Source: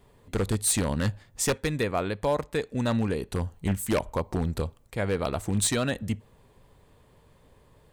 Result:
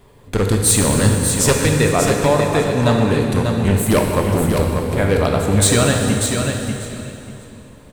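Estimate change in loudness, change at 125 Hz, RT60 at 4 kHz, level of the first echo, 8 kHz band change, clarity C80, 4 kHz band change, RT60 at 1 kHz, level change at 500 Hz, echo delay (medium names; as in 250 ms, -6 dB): +12.0 dB, +13.5 dB, 2.8 s, -6.0 dB, +12.5 dB, 1.5 dB, +12.5 dB, 2.9 s, +12.5 dB, 591 ms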